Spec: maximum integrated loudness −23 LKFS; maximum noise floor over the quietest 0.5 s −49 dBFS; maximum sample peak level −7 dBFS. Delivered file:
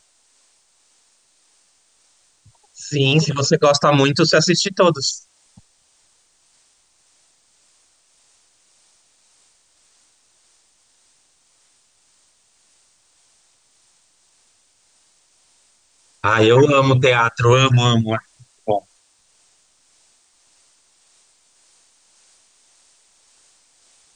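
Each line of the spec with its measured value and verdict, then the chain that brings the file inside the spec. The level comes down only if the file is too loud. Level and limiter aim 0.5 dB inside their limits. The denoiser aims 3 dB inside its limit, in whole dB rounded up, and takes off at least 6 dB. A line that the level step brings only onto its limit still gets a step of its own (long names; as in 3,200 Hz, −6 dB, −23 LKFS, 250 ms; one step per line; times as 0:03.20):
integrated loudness −16.0 LKFS: out of spec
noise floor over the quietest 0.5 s −60 dBFS: in spec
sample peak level −3.5 dBFS: out of spec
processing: level −7.5 dB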